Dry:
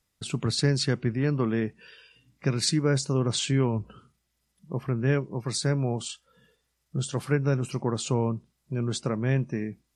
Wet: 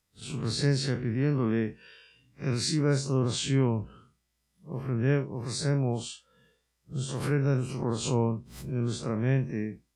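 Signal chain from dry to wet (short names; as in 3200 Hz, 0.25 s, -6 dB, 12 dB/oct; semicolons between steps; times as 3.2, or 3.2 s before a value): time blur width 86 ms; 7.01–8.91 backwards sustainer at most 81 dB/s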